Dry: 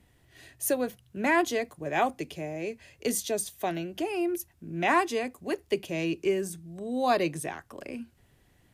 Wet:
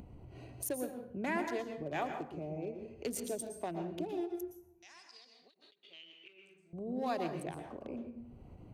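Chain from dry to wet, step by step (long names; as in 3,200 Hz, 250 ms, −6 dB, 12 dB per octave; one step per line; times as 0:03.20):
adaptive Wiener filter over 25 samples
downward compressor 2 to 1, threshold −49 dBFS, peak gain reduction 16 dB
0:04.53–0:06.73: resonant band-pass 6,700 Hz → 2,100 Hz, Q 12
dense smooth reverb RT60 0.6 s, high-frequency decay 0.6×, pre-delay 105 ms, DRR 5.5 dB
upward compression, threshold −47 dBFS
every ending faded ahead of time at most 220 dB per second
level +3.5 dB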